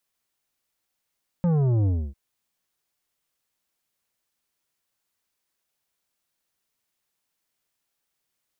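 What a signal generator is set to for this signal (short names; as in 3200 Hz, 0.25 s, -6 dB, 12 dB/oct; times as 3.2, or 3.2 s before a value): sub drop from 180 Hz, over 0.70 s, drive 10 dB, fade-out 0.28 s, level -19.5 dB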